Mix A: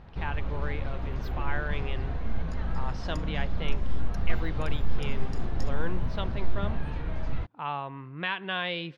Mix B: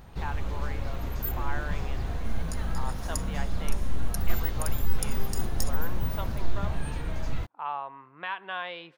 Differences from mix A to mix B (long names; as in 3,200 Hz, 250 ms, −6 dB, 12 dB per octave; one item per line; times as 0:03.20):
speech: add resonant band-pass 950 Hz, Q 1.3
master: remove high-frequency loss of the air 220 metres